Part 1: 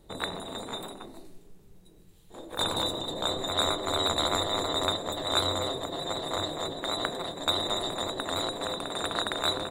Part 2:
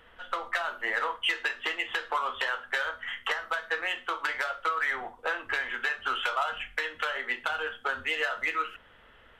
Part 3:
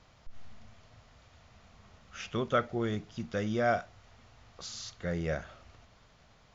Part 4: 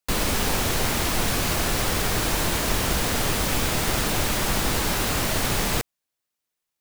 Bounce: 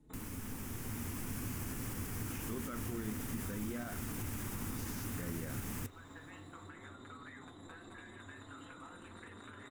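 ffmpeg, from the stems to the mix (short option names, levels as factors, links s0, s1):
-filter_complex "[0:a]lowpass=8900,acrossover=split=110|1000[s0][s1][s2];[s0]acompressor=threshold=0.00316:ratio=4[s3];[s1]acompressor=threshold=0.0112:ratio=4[s4];[s2]acompressor=threshold=0.0224:ratio=4[s5];[s3][s4][s5]amix=inputs=3:normalize=0,asplit=2[s6][s7];[s7]adelay=4.3,afreqshift=0.83[s8];[s6][s8]amix=inputs=2:normalize=1,volume=0.75,asplit=2[s9][s10];[s10]volume=0.473[s11];[1:a]lowpass=2700,adelay=2450,volume=0.473[s12];[2:a]equalizer=f=100:t=o:w=1.4:g=-13,dynaudnorm=f=160:g=7:m=3.55,acrusher=bits=2:mode=log:mix=0:aa=0.000001,adelay=150,volume=0.75[s13];[3:a]equalizer=f=13000:w=0.55:g=5.5,dynaudnorm=f=220:g=9:m=3.76,adelay=50,volume=0.251[s14];[s9][s12]amix=inputs=2:normalize=0,acompressor=threshold=0.00398:ratio=2,volume=1[s15];[s13][s14]amix=inputs=2:normalize=0,alimiter=limit=0.112:level=0:latency=1:release=52,volume=1[s16];[s11]aecho=0:1:217|434|651|868|1085|1302|1519|1736:1|0.54|0.292|0.157|0.085|0.0459|0.0248|0.0134[s17];[s15][s16][s17]amix=inputs=3:normalize=0,equalizer=f=100:t=o:w=0.67:g=12,equalizer=f=250:t=o:w=0.67:g=11,equalizer=f=630:t=o:w=0.67:g=-9,equalizer=f=4000:t=o:w=0.67:g=-12,flanger=delay=3.4:depth=8.6:regen=-73:speed=1.5:shape=triangular,acompressor=threshold=0.00178:ratio=1.5"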